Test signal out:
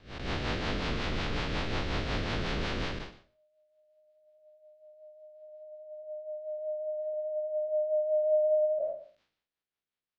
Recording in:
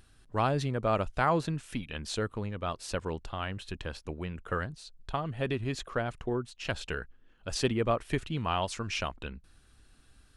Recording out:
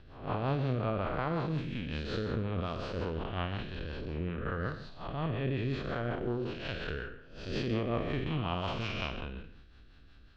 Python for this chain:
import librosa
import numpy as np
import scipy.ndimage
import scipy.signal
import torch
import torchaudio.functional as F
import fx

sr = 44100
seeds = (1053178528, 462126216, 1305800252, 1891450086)

p1 = fx.spec_blur(x, sr, span_ms=256.0)
p2 = scipy.signal.sosfilt(scipy.signal.butter(4, 4300.0, 'lowpass', fs=sr, output='sos'), p1)
p3 = fx.over_compress(p2, sr, threshold_db=-38.0, ratio=-1.0)
p4 = p2 + F.gain(torch.from_numpy(p3), -1.0).numpy()
p5 = fx.rotary(p4, sr, hz=5.5)
y = fx.echo_multitap(p5, sr, ms=(51, 120), db=(-16.5, -15.5))